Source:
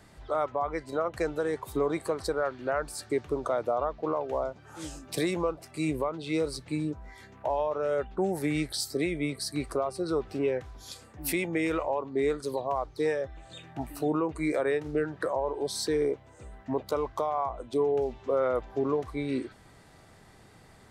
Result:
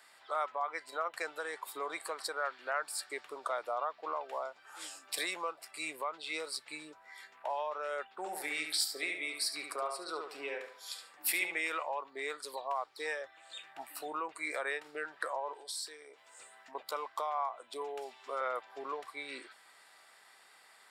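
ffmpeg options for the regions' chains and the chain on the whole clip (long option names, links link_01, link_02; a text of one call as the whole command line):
ffmpeg -i in.wav -filter_complex "[0:a]asettb=1/sr,asplit=3[link_01][link_02][link_03];[link_01]atrim=end=8.094[link_04];[link_02]atrim=start=8.09:end=11.59,asetpts=PTS-STARTPTS,afade=type=in:duration=0.004:curve=qsin,afade=type=out:start_time=3.496:duration=0.004:curve=qsin,highpass=130,asplit=2[link_05][link_06];[link_06]adelay=71,lowpass=frequency=3500:poles=1,volume=-4.5dB,asplit=2[link_07][link_08];[link_08]adelay=71,lowpass=frequency=3500:poles=1,volume=0.36,asplit=2[link_09][link_10];[link_10]adelay=71,lowpass=frequency=3500:poles=1,volume=0.36,asplit=2[link_11][link_12];[link_12]adelay=71,lowpass=frequency=3500:poles=1,volume=0.36,asplit=2[link_13][link_14];[link_14]adelay=71,lowpass=frequency=3500:poles=1,volume=0.36[link_15];[link_05][link_07][link_09][link_11][link_13][link_15]amix=inputs=6:normalize=0,atrim=end_sample=154350[link_16];[link_03]atrim=start=11.586[link_17];[link_04][link_16]acrossfade=duration=0.004:curve1=hsin:curve2=qsin[link_18];[link_18][link_17]acrossfade=duration=0.004:curve1=qsin:curve2=hsin,asettb=1/sr,asplit=3[link_19][link_20][link_21];[link_19]atrim=end=15.534[link_22];[link_20]atrim=start=15.53:end=16.75,asetpts=PTS-STARTPTS,afade=type=in:duration=0.004:curve=qsin,afade=type=out:start_time=1.216:duration=0.004:curve=qsin,equalizer=frequency=7700:width=0.48:gain=8,acompressor=threshold=-37dB:ratio=8:attack=3.2:release=140:knee=1:detection=peak,asplit=2[link_23][link_24];[link_24]adelay=26,volume=-13.5dB[link_25];[link_23][link_25]amix=inputs=2:normalize=0,atrim=end_sample=53802[link_26];[link_21]atrim=start=16.746[link_27];[link_22][link_26]acrossfade=duration=0.004:curve1=hsin:curve2=qsin[link_28];[link_28][link_27]acrossfade=duration=0.004:curve1=qsin:curve2=hsin,asettb=1/sr,asplit=3[link_29][link_30][link_31];[link_29]atrim=end=17.814[link_32];[link_30]atrim=start=17.81:end=18.41,asetpts=PTS-STARTPTS,afade=type=in:duration=0.004:curve=qsin,afade=type=out:start_time=0.596:duration=0.004:curve=qsin,equalizer=frequency=10000:width=0.47:gain=7.5,bandreject=frequency=510:width=8.3[link_33];[link_31]atrim=start=18.406[link_34];[link_32][link_33]acrossfade=duration=0.004:curve1=hsin:curve2=qsin[link_35];[link_35][link_34]acrossfade=duration=0.004:curve1=qsin:curve2=hsin,highpass=1100,bandreject=frequency=6200:width=5.6,volume=1dB" out.wav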